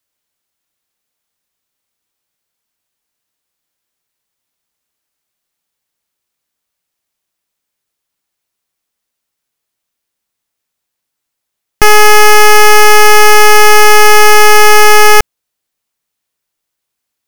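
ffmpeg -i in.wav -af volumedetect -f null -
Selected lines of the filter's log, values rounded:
mean_volume: -8.6 dB
max_volume: -1.6 dB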